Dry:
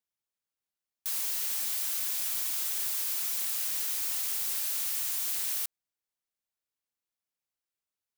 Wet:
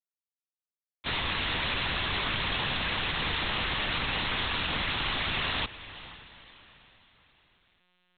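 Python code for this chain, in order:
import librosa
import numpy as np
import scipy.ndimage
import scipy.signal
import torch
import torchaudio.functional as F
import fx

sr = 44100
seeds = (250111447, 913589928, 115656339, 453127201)

p1 = fx.delta_hold(x, sr, step_db=-34.0)
p2 = fx.leveller(p1, sr, passes=3)
p3 = p2 + fx.echo_diffused(p2, sr, ms=490, feedback_pct=42, wet_db=-15.0, dry=0)
p4 = fx.lpc_monotone(p3, sr, seeds[0], pitch_hz=180.0, order=8)
y = p4 * 10.0 ** (6.0 / 20.0)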